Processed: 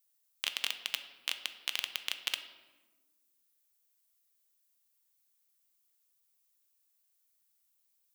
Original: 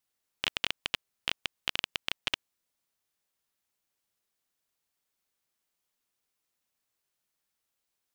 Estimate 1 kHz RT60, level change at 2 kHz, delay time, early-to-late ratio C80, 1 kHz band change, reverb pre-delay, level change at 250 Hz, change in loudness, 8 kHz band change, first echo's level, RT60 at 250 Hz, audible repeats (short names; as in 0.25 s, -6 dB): 1.2 s, -3.5 dB, none, 13.0 dB, -6.5 dB, 3 ms, -12.5 dB, -2.0 dB, +3.5 dB, none, 2.0 s, none